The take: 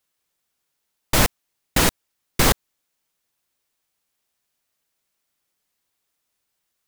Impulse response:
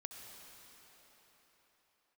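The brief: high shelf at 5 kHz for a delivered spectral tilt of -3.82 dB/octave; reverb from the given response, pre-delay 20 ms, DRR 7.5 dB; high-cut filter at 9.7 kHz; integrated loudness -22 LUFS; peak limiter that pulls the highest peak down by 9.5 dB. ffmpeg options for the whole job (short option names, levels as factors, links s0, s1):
-filter_complex "[0:a]lowpass=9700,highshelf=f=5000:g=-6.5,alimiter=limit=0.224:level=0:latency=1,asplit=2[s0][s1];[1:a]atrim=start_sample=2205,adelay=20[s2];[s1][s2]afir=irnorm=-1:irlink=0,volume=0.631[s3];[s0][s3]amix=inputs=2:normalize=0,volume=2.11"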